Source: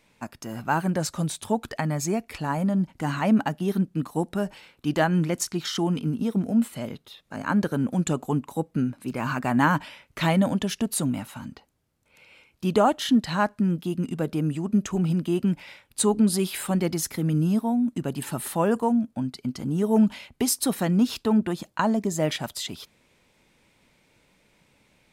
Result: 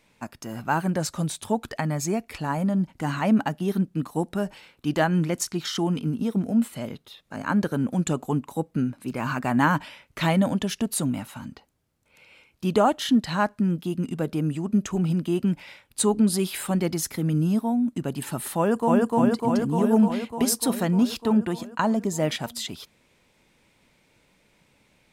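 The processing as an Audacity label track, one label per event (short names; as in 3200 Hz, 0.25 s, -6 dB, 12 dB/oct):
18.570000	19.070000	echo throw 0.3 s, feedback 75%, level 0 dB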